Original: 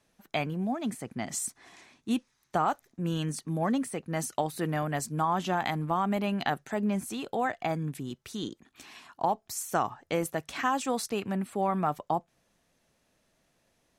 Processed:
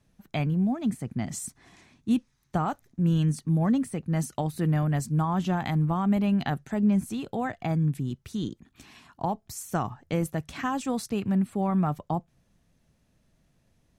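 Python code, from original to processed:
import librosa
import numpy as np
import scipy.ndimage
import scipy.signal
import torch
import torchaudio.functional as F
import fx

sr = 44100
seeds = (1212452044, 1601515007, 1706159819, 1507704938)

y = fx.bass_treble(x, sr, bass_db=15, treble_db=0)
y = F.gain(torch.from_numpy(y), -3.0).numpy()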